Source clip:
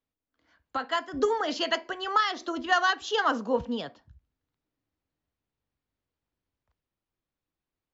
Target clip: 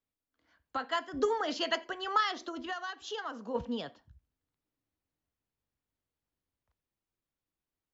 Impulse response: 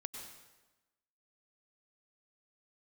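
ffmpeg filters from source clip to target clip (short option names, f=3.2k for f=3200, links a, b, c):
-filter_complex "[0:a]asplit=3[a][b][c];[a]afade=t=out:st=2.45:d=0.02[d];[b]acompressor=threshold=-32dB:ratio=6,afade=t=in:st=2.45:d=0.02,afade=t=out:st=3.54:d=0.02[e];[c]afade=t=in:st=3.54:d=0.02[f];[d][e][f]amix=inputs=3:normalize=0[g];[1:a]atrim=start_sample=2205,atrim=end_sample=3969[h];[g][h]afir=irnorm=-1:irlink=0"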